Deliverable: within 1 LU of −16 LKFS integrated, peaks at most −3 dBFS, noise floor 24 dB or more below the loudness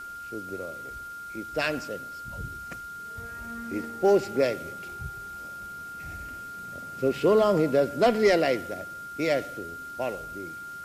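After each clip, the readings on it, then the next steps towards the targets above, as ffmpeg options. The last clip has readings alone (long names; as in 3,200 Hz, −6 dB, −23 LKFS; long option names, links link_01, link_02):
interfering tone 1,400 Hz; level of the tone −37 dBFS; integrated loudness −28.5 LKFS; sample peak −9.0 dBFS; target loudness −16.0 LKFS
→ -af "bandreject=frequency=1400:width=30"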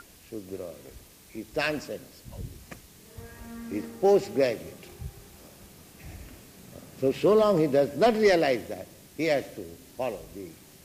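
interfering tone none found; integrated loudness −25.5 LKFS; sample peak −9.0 dBFS; target loudness −16.0 LKFS
→ -af "volume=9.5dB,alimiter=limit=-3dB:level=0:latency=1"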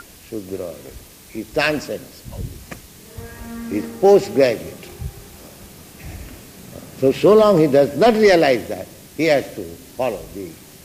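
integrated loudness −16.5 LKFS; sample peak −3.0 dBFS; background noise floor −44 dBFS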